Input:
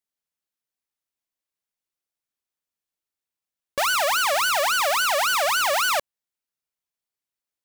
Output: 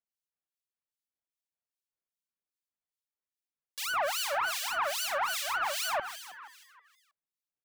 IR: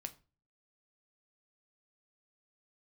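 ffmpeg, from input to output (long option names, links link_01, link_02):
-filter_complex "[0:a]asplit=8[link_01][link_02][link_03][link_04][link_05][link_06][link_07][link_08];[link_02]adelay=159,afreqshift=82,volume=-9dB[link_09];[link_03]adelay=318,afreqshift=164,volume=-13.9dB[link_10];[link_04]adelay=477,afreqshift=246,volume=-18.8dB[link_11];[link_05]adelay=636,afreqshift=328,volume=-23.6dB[link_12];[link_06]adelay=795,afreqshift=410,volume=-28.5dB[link_13];[link_07]adelay=954,afreqshift=492,volume=-33.4dB[link_14];[link_08]adelay=1113,afreqshift=574,volume=-38.3dB[link_15];[link_01][link_09][link_10][link_11][link_12][link_13][link_14][link_15]amix=inputs=8:normalize=0,acrossover=split=2300[link_16][link_17];[link_16]aeval=exprs='val(0)*(1-1/2+1/2*cos(2*PI*2.5*n/s))':channel_layout=same[link_18];[link_17]aeval=exprs='val(0)*(1-1/2-1/2*cos(2*PI*2.5*n/s))':channel_layout=same[link_19];[link_18][link_19]amix=inputs=2:normalize=0,flanger=delay=0.1:depth=2.3:regen=-49:speed=0.8:shape=triangular,volume=-2dB"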